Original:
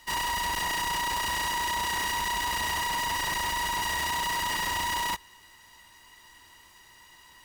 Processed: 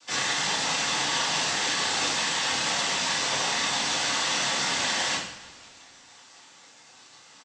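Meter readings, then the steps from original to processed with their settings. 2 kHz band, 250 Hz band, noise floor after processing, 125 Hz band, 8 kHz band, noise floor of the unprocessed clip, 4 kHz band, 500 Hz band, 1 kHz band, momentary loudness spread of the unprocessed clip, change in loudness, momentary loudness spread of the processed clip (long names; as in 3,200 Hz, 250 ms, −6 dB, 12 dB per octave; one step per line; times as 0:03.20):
+2.0 dB, +5.5 dB, −53 dBFS, 0.0 dB, +6.5 dB, −55 dBFS, +6.5 dB, +7.5 dB, −2.5 dB, 0 LU, +3.5 dB, 1 LU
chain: gate on every frequency bin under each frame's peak −10 dB weak
low-shelf EQ 130 Hz −7 dB
cochlear-implant simulation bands 16
on a send: echo with shifted repeats 167 ms, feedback 65%, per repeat −140 Hz, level −21.5 dB
on the sum: coupled-rooms reverb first 0.56 s, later 1.6 s, DRR −6 dB
level +2 dB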